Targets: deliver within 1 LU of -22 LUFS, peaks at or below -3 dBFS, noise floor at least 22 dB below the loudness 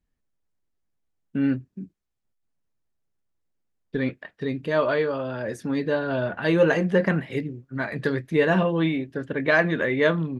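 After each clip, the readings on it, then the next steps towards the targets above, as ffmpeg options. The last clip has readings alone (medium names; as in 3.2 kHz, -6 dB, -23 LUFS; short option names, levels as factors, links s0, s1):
loudness -24.5 LUFS; peak level -6.5 dBFS; loudness target -22.0 LUFS
-> -af "volume=1.33"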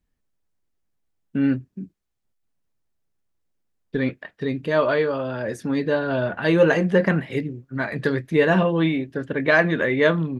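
loudness -22.0 LUFS; peak level -4.0 dBFS; noise floor -74 dBFS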